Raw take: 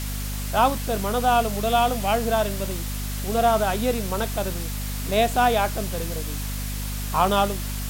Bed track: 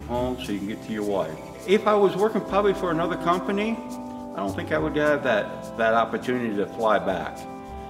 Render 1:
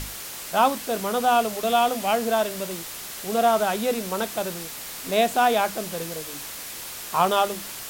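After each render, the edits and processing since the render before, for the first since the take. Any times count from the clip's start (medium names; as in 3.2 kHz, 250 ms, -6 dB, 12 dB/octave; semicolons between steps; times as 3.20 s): hum notches 50/100/150/200/250/300 Hz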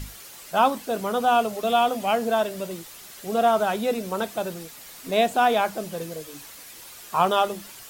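noise reduction 9 dB, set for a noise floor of -36 dBFS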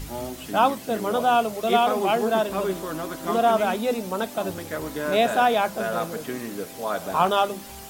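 add bed track -7 dB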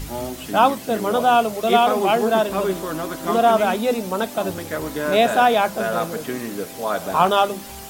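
trim +4 dB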